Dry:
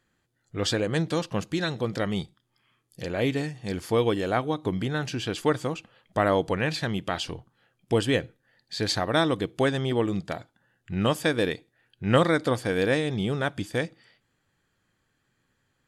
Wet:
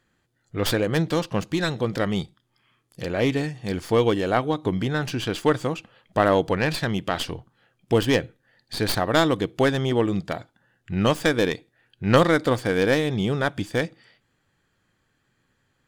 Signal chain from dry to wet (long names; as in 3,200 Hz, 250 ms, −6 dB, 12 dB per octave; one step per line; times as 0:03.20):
stylus tracing distortion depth 0.12 ms
high-shelf EQ 7,300 Hz −4 dB
level +3.5 dB